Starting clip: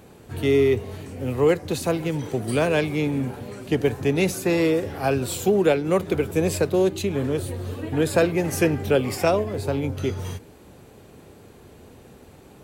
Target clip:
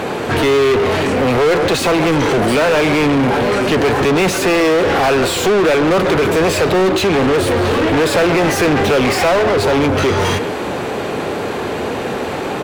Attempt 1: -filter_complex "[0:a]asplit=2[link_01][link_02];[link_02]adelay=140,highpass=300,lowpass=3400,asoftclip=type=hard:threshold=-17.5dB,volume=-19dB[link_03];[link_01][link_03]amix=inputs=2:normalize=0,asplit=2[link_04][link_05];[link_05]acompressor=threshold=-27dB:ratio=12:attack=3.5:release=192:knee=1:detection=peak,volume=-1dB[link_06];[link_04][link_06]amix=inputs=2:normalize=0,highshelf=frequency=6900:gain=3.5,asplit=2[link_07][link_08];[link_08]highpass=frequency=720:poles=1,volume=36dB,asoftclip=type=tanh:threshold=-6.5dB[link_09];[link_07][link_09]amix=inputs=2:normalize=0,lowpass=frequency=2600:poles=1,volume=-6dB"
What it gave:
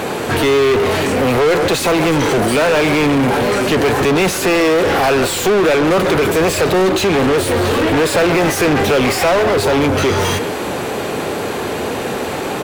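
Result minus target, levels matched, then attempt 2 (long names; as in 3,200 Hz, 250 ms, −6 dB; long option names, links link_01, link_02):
8,000 Hz band +2.5 dB
-filter_complex "[0:a]asplit=2[link_01][link_02];[link_02]adelay=140,highpass=300,lowpass=3400,asoftclip=type=hard:threshold=-17.5dB,volume=-19dB[link_03];[link_01][link_03]amix=inputs=2:normalize=0,asplit=2[link_04][link_05];[link_05]acompressor=threshold=-27dB:ratio=12:attack=3.5:release=192:knee=1:detection=peak,volume=-1dB[link_06];[link_04][link_06]amix=inputs=2:normalize=0,highshelf=frequency=6900:gain=-8,asplit=2[link_07][link_08];[link_08]highpass=frequency=720:poles=1,volume=36dB,asoftclip=type=tanh:threshold=-6.5dB[link_09];[link_07][link_09]amix=inputs=2:normalize=0,lowpass=frequency=2600:poles=1,volume=-6dB"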